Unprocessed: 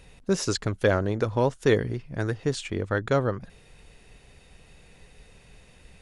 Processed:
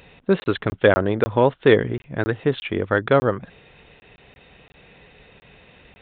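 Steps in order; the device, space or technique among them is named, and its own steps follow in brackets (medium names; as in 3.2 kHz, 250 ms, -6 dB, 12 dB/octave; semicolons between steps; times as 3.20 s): call with lost packets (high-pass 180 Hz 6 dB/octave; resampled via 8 kHz; lost packets random); trim +7.5 dB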